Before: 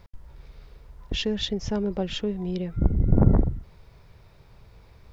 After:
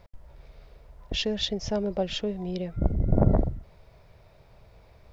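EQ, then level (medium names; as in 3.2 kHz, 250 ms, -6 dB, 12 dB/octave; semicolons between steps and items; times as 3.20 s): peaking EQ 2.3 kHz +2 dB; dynamic bell 4.9 kHz, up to +6 dB, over -55 dBFS, Q 1.2; peaking EQ 630 Hz +10 dB 0.58 oct; -3.5 dB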